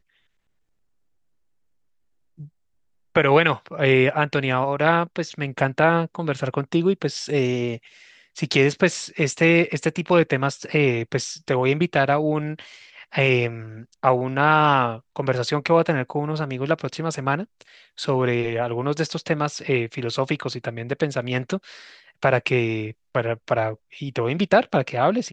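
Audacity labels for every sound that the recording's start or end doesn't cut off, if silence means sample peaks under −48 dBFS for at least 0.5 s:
2.380000	2.490000	sound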